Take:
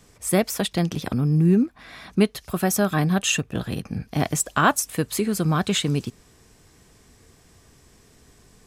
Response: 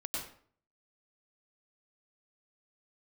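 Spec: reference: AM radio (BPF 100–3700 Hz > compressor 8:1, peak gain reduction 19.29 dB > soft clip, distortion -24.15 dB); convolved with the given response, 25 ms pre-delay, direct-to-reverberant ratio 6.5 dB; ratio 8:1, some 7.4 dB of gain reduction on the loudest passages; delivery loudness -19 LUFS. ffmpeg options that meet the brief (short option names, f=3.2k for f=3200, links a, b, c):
-filter_complex "[0:a]acompressor=threshold=-21dB:ratio=8,asplit=2[a][b];[1:a]atrim=start_sample=2205,adelay=25[c];[b][c]afir=irnorm=-1:irlink=0,volume=-8.5dB[d];[a][d]amix=inputs=2:normalize=0,highpass=100,lowpass=3.7k,acompressor=threshold=-39dB:ratio=8,asoftclip=threshold=-28.5dB,volume=24.5dB"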